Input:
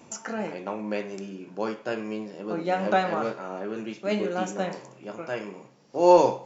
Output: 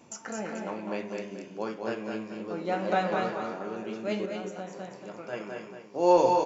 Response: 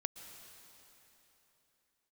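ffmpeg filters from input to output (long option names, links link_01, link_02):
-filter_complex "[0:a]asplit=2[link_01][link_02];[link_02]aecho=0:1:204:0.531[link_03];[link_01][link_03]amix=inputs=2:normalize=0,asettb=1/sr,asplit=3[link_04][link_05][link_06];[link_04]atrim=end=4.254[link_07];[link_05]atrim=start=4.25:end=5.33,asetpts=PTS-STARTPTS,afade=type=in:duration=0.004:curve=qsin,afade=type=out:start_time=1.076:duration=0.004:curve=qsin,acompressor=threshold=-31dB:ratio=10[link_08];[link_06]atrim=start=5.326[link_09];[link_07][link_08]acrossfade=duration=0.004:curve1=hsin:curve2=qsin[link_10];[link_10][link_09]acrossfade=duration=0.004:curve1=qsin:curve2=hsin,asplit=2[link_11][link_12];[link_12]aecho=0:1:231:0.473[link_13];[link_11][link_13]amix=inputs=2:normalize=0,volume=-4.5dB"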